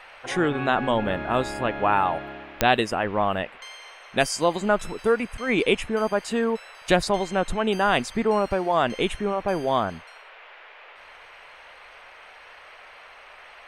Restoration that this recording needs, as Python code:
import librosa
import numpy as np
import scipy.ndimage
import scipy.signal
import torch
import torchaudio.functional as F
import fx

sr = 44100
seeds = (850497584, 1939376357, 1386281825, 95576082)

y = fx.fix_declick_ar(x, sr, threshold=10.0)
y = fx.noise_reduce(y, sr, print_start_s=10.58, print_end_s=11.08, reduce_db=23.0)